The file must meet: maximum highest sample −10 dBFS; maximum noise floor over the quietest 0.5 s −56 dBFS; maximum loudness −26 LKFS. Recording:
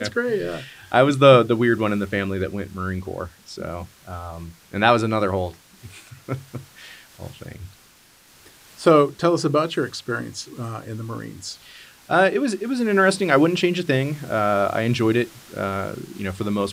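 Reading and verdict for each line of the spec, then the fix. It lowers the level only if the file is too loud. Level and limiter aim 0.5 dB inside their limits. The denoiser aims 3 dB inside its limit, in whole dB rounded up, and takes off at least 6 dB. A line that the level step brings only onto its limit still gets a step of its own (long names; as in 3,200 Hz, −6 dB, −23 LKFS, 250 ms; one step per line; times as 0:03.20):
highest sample −1.5 dBFS: out of spec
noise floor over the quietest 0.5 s −53 dBFS: out of spec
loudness −21.0 LKFS: out of spec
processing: level −5.5 dB
brickwall limiter −10.5 dBFS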